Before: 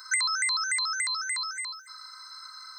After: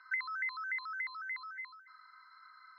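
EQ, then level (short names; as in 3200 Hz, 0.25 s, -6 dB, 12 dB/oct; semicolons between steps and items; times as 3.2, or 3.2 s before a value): BPF 660–3800 Hz; air absorption 440 m; bell 2100 Hz +7 dB 1.1 oct; -8.0 dB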